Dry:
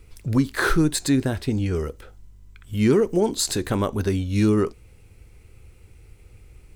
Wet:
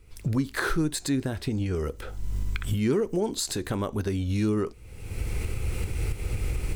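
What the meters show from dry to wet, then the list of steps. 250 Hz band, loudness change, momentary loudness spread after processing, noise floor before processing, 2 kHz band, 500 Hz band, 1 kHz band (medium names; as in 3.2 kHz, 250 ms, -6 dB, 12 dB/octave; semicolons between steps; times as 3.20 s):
-6.0 dB, -6.5 dB, 9 LU, -50 dBFS, -5.0 dB, -6.0 dB, -6.0 dB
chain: recorder AGC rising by 45 dB/s; trim -6.5 dB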